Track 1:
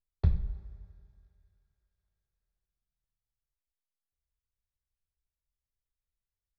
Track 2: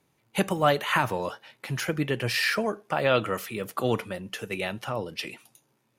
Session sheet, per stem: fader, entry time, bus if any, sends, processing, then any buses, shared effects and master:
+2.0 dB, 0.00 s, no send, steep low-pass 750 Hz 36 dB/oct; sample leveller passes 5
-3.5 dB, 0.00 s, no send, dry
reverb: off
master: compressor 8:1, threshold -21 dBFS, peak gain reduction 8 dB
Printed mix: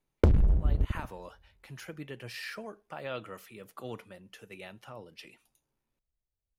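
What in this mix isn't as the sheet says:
stem 1 +2.0 dB -> +13.5 dB; stem 2 -3.5 dB -> -15.0 dB

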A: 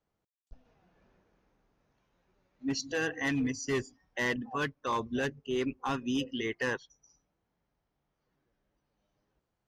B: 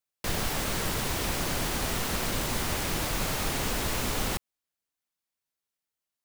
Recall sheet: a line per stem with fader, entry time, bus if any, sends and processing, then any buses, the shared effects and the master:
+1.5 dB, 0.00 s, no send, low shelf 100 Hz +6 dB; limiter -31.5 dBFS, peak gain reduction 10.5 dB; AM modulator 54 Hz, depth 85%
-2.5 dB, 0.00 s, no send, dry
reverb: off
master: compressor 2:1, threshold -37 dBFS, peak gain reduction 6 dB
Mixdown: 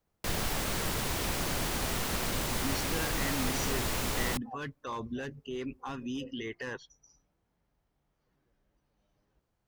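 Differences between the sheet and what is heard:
stem A: missing AM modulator 54 Hz, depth 85%; master: missing compressor 2:1, threshold -37 dBFS, peak gain reduction 6 dB

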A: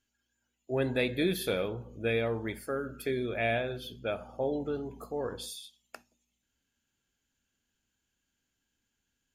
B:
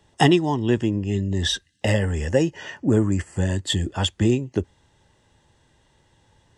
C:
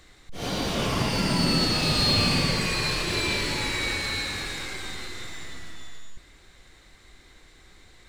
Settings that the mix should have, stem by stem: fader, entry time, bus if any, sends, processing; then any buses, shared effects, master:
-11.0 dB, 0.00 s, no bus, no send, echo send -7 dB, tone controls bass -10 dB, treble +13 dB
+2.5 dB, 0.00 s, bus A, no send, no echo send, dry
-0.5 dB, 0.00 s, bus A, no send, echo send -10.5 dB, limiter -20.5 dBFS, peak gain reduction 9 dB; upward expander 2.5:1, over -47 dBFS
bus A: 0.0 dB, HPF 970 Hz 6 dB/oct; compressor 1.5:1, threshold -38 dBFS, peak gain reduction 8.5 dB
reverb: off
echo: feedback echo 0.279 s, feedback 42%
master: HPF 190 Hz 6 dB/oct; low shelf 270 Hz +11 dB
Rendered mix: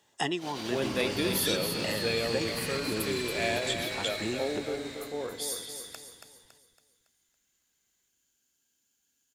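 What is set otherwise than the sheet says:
stem A -11.0 dB -> -2.5 dB; stem B +2.5 dB -> -3.5 dB

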